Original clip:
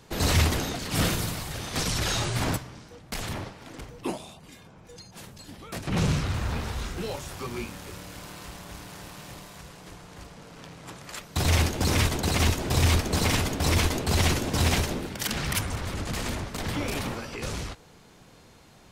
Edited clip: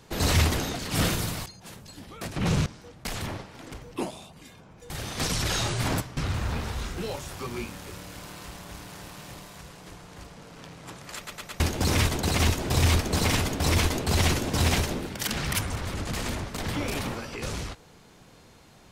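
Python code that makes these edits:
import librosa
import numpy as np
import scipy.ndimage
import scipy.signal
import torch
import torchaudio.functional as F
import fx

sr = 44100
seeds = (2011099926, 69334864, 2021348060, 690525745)

y = fx.edit(x, sr, fx.swap(start_s=1.46, length_s=1.27, other_s=4.97, other_length_s=1.2),
    fx.stutter_over(start_s=11.16, slice_s=0.11, count=4), tone=tone)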